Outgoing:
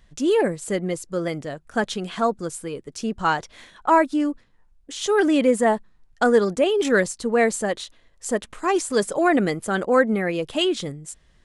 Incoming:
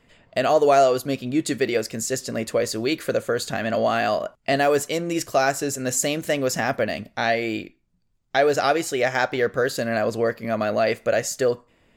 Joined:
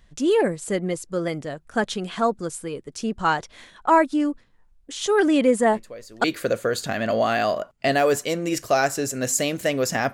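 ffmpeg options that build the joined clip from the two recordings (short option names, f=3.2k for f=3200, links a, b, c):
-filter_complex "[1:a]asplit=2[a][b];[0:a]apad=whole_dur=10.13,atrim=end=10.13,atrim=end=6.242[c];[b]atrim=start=2.878:end=6.77[d];[a]atrim=start=2.37:end=2.88,asetpts=PTS-STARTPTS,volume=-17dB,afade=t=in:d=0.004:c=hsin,afade=t=out:st=0.506:d=0.004:c=hsin,adelay=252693S[e];[c][d]acrossfade=d=0.004:c1=hsin:c2=hsin[f];[f][e]amix=inputs=2:normalize=0"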